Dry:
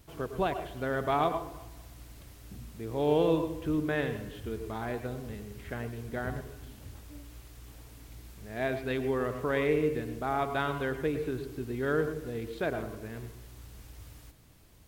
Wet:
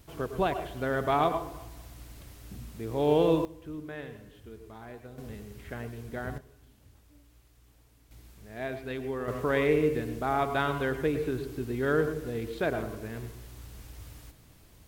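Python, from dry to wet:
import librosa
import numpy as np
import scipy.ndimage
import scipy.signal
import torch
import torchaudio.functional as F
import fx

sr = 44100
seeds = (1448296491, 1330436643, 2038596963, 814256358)

y = fx.gain(x, sr, db=fx.steps((0.0, 2.0), (3.45, -10.0), (5.18, -1.5), (6.38, -11.5), (8.11, -4.0), (9.28, 2.5)))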